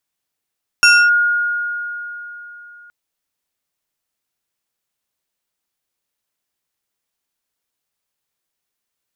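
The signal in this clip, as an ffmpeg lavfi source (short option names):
-f lavfi -i "aevalsrc='0.531*pow(10,-3*t/3.57)*sin(2*PI*1430*t+1.2*clip(1-t/0.27,0,1)*sin(2*PI*2.88*1430*t))':d=2.07:s=44100"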